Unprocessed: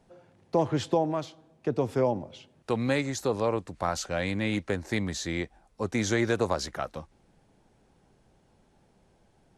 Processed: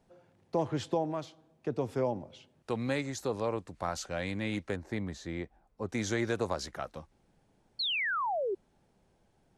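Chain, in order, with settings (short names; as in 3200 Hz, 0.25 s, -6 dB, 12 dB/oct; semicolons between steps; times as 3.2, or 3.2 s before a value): 4.76–5.89 high shelf 2500 Hz -11 dB; 7.79–8.55 painted sound fall 360–4500 Hz -26 dBFS; gain -5.5 dB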